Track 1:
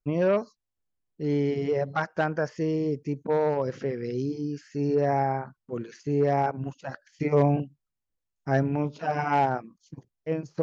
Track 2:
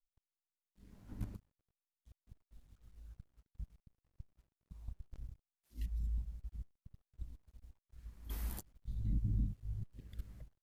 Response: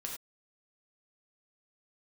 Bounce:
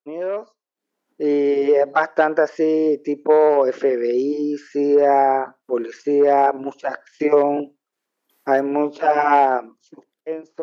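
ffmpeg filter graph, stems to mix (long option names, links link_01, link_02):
-filter_complex "[0:a]highshelf=frequency=2200:gain=-10.5,acompressor=threshold=-23dB:ratio=6,volume=2dB,asplit=2[link_01][link_02];[link_02]volume=-22.5dB[link_03];[1:a]acompressor=threshold=-50dB:ratio=2,volume=-17.5dB[link_04];[2:a]atrim=start_sample=2205[link_05];[link_03][link_05]afir=irnorm=-1:irlink=0[link_06];[link_01][link_04][link_06]amix=inputs=3:normalize=0,highpass=frequency=330:width=0.5412,highpass=frequency=330:width=1.3066,dynaudnorm=framelen=150:gausssize=11:maxgain=12.5dB"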